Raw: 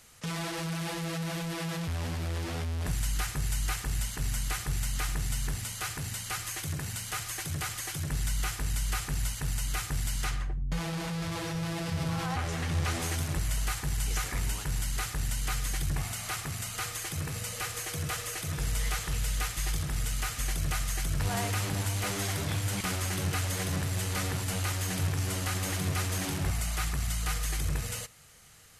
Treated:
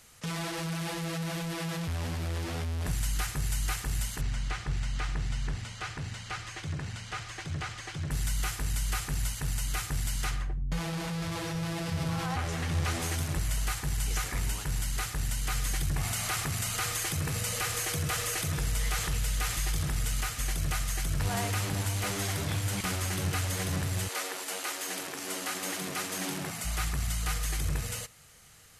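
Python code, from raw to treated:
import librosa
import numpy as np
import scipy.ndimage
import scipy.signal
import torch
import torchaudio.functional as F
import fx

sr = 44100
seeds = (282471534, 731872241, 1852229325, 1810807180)

y = fx.air_absorb(x, sr, metres=120.0, at=(4.21, 8.11))
y = fx.env_flatten(y, sr, amount_pct=50, at=(15.55, 20.21))
y = fx.highpass(y, sr, hz=fx.line((24.07, 390.0), (26.64, 150.0)), slope=24, at=(24.07, 26.64), fade=0.02)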